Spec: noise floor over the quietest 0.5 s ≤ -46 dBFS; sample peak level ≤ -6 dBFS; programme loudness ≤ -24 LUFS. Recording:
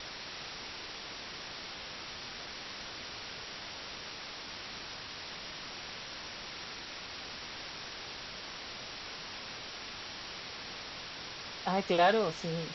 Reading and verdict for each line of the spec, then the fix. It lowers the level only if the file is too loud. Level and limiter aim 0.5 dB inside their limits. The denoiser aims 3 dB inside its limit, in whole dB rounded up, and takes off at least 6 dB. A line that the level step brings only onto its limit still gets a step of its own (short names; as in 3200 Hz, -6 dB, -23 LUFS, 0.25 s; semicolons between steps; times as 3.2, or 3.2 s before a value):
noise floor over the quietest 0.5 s -44 dBFS: fail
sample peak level -13.5 dBFS: OK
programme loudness -38.0 LUFS: OK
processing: denoiser 6 dB, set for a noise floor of -44 dBFS